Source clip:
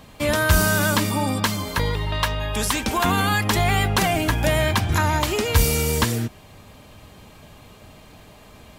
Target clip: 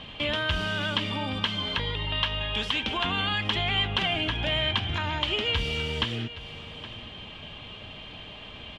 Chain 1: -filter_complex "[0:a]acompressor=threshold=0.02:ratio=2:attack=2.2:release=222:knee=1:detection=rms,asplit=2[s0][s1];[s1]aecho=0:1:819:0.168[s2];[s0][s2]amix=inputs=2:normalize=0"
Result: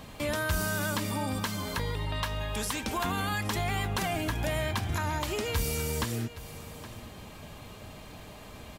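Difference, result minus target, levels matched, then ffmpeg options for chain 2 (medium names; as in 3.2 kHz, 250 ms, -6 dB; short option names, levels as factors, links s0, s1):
4 kHz band -7.5 dB
-filter_complex "[0:a]acompressor=threshold=0.02:ratio=2:attack=2.2:release=222:knee=1:detection=rms,lowpass=f=3100:t=q:w=6.5,asplit=2[s0][s1];[s1]aecho=0:1:819:0.168[s2];[s0][s2]amix=inputs=2:normalize=0"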